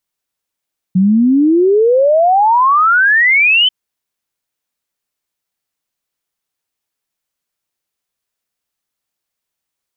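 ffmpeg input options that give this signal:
-f lavfi -i "aevalsrc='0.447*clip(min(t,2.74-t)/0.01,0,1)*sin(2*PI*180*2.74/log(3100/180)*(exp(log(3100/180)*t/2.74)-1))':d=2.74:s=44100"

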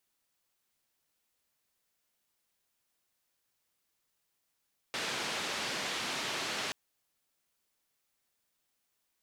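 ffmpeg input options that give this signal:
-f lavfi -i "anoisesrc=c=white:d=1.78:r=44100:seed=1,highpass=f=150,lowpass=f=4200,volume=-24.2dB"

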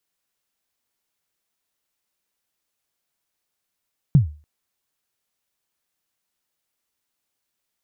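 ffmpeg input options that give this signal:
-f lavfi -i "aevalsrc='0.501*pow(10,-3*t/0.35)*sin(2*PI*(160*0.122/log(75/160)*(exp(log(75/160)*min(t,0.122)/0.122)-1)+75*max(t-0.122,0)))':d=0.29:s=44100"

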